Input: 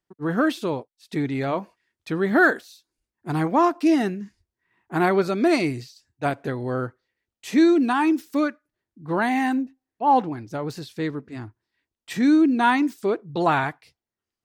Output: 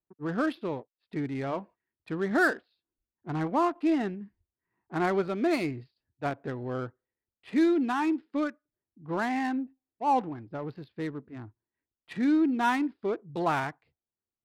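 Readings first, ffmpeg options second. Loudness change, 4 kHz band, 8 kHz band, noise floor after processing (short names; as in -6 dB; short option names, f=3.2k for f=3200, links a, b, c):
-7.0 dB, -8.5 dB, n/a, under -85 dBFS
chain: -af "aresample=11025,aresample=44100,adynamicsmooth=sensitivity=4.5:basefreq=1.4k,volume=-7dB"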